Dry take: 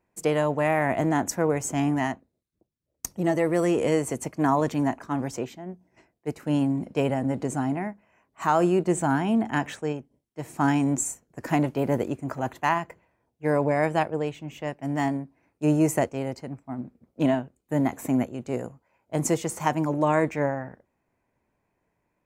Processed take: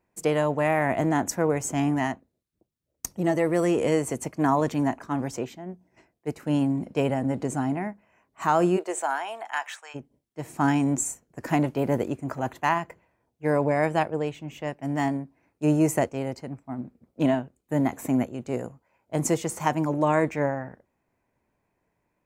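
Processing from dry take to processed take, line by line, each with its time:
8.76–9.94 s: high-pass 400 Hz -> 1 kHz 24 dB/octave

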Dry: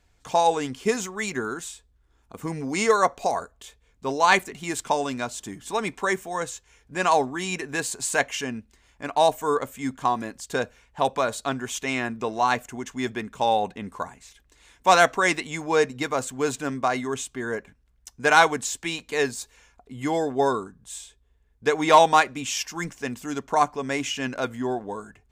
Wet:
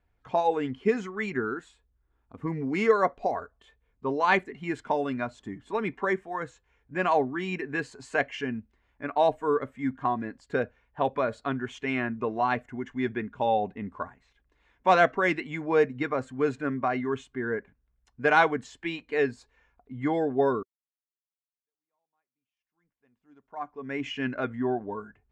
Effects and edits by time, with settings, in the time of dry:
20.63–24.09 s: fade in exponential
whole clip: spectral noise reduction 8 dB; low-pass 2.1 kHz 12 dB/octave; dynamic bell 1.1 kHz, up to -5 dB, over -31 dBFS, Q 1.1

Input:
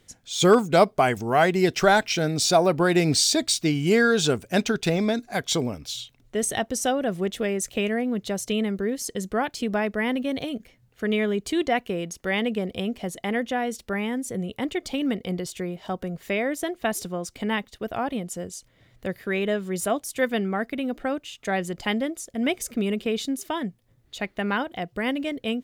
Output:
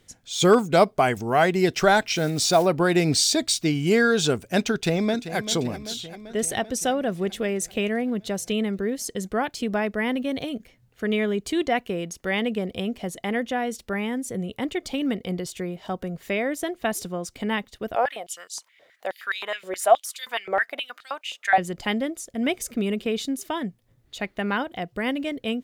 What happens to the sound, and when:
2.16–2.67 s: block-companded coder 5-bit
4.73–5.37 s: echo throw 390 ms, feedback 70%, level -12 dB
17.95–21.58 s: step-sequenced high-pass 9.5 Hz 540–4100 Hz

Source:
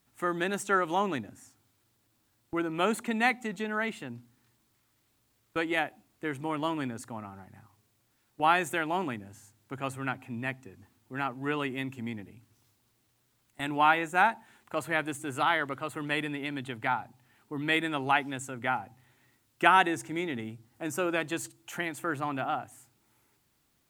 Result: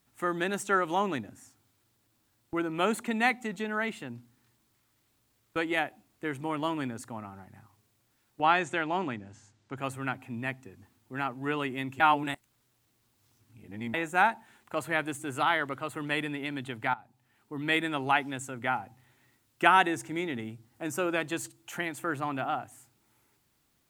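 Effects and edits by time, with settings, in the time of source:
8.41–9.77 s: low-pass 7 kHz 24 dB/octave
12.00–13.94 s: reverse
16.94–17.72 s: fade in, from -15.5 dB

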